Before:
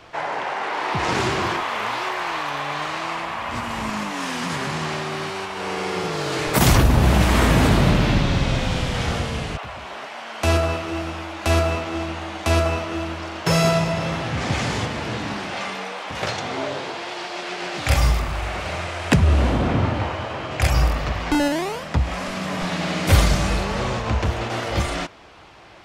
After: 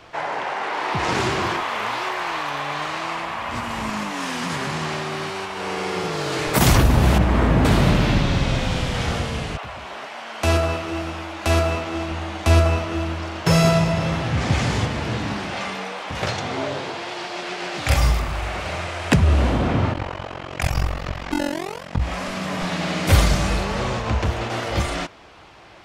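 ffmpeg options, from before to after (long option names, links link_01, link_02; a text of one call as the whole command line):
ffmpeg -i in.wav -filter_complex "[0:a]asettb=1/sr,asplit=3[link_01][link_02][link_03];[link_01]atrim=end=7.184[link_04];[link_02]atrim=start=7.18:end=7.65,asetpts=PTS-STARTPTS,afade=type=in:duration=0.004:curve=qsin,afade=type=out:start_time=0.466:duration=0.004:curve=qsin,lowpass=frequency=1200:poles=1[link_05];[link_03]atrim=start=7.646[link_06];[link_04][link_05]acrossfade=duration=0.004:curve1=hsin:curve2=qsin[link_07];[link_07][link_06]acrossfade=duration=0.004:curve1=qsin:curve2=hsin,asettb=1/sr,asplit=3[link_08][link_09][link_10];[link_08]atrim=end=12.114[link_11];[link_09]atrim=start=12.11:end=17.53,asetpts=PTS-STARTPTS,afade=type=in:duration=0.004:curve=qsin,afade=type=out:start_time=5.416:duration=0.004:curve=qsin,lowshelf=frequency=140:gain=8[link_12];[link_10]atrim=start=17.526[link_13];[link_11][link_12]acrossfade=duration=0.004:curve1=hsin:curve2=qsin[link_14];[link_14][link_13]acrossfade=duration=0.004:curve1=qsin:curve2=hsin,asplit=3[link_15][link_16][link_17];[link_15]afade=type=out:start_time=19.92:duration=0.02[link_18];[link_16]tremolo=f=45:d=0.947,afade=type=in:start_time=19.92:duration=0.02,afade=type=out:start_time=22:duration=0.02[link_19];[link_17]afade=type=in:start_time=22:duration=0.02[link_20];[link_18][link_19][link_20]amix=inputs=3:normalize=0" out.wav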